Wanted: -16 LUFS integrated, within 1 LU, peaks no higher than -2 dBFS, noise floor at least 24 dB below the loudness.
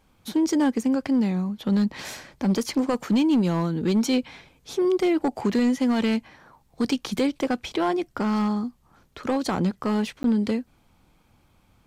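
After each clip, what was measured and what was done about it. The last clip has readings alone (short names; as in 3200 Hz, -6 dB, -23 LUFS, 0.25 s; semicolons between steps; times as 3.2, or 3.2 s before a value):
clipped 1.4%; flat tops at -16.0 dBFS; dropouts 1; longest dropout 12 ms; loudness -24.5 LUFS; peak -16.0 dBFS; loudness target -16.0 LUFS
-> clip repair -16 dBFS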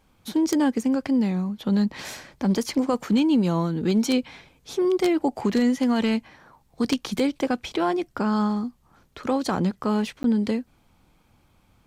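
clipped 0.0%; dropouts 1; longest dropout 12 ms
-> interpolate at 10.23, 12 ms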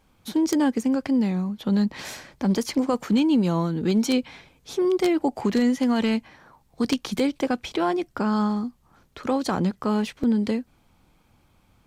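dropouts 0; loudness -24.0 LUFS; peak -7.0 dBFS; loudness target -16.0 LUFS
-> gain +8 dB; limiter -2 dBFS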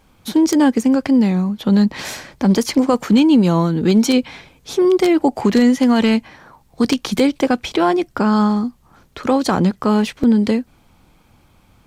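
loudness -16.0 LUFS; peak -2.0 dBFS; noise floor -54 dBFS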